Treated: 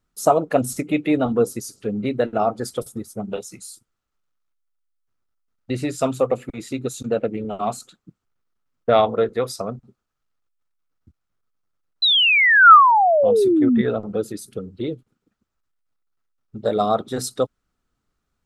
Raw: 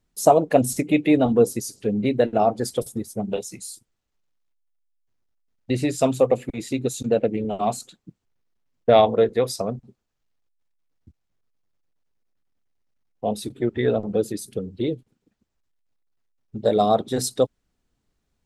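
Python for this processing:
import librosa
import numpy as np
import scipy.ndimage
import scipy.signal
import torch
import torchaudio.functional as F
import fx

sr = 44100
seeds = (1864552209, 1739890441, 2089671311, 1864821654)

y = fx.spec_paint(x, sr, seeds[0], shape='fall', start_s=12.02, length_s=1.8, low_hz=210.0, high_hz=4100.0, level_db=-14.0)
y = fx.peak_eq(y, sr, hz=1300.0, db=11.0, octaves=0.42)
y = y * 10.0 ** (-2.0 / 20.0)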